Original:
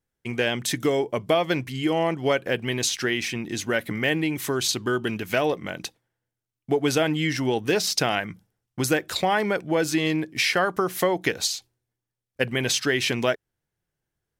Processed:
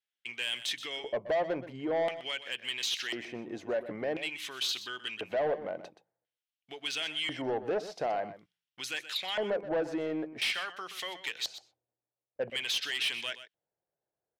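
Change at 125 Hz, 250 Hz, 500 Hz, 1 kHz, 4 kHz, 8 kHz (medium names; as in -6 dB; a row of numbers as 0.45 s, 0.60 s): -21.0 dB, -14.5 dB, -9.0 dB, -10.5 dB, -5.0 dB, -14.0 dB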